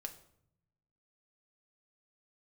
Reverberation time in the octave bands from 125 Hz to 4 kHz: 1.4, 1.2, 0.75, 0.65, 0.55, 0.50 s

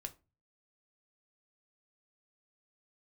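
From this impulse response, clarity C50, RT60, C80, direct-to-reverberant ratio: 19.0 dB, 0.30 s, 26.0 dB, 6.0 dB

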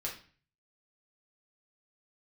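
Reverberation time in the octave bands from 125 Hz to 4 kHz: 0.75, 0.50, 0.40, 0.40, 0.45, 0.40 s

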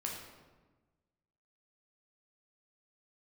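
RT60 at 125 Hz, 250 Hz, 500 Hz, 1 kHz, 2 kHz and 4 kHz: 1.6, 1.5, 1.3, 1.2, 1.0, 0.80 s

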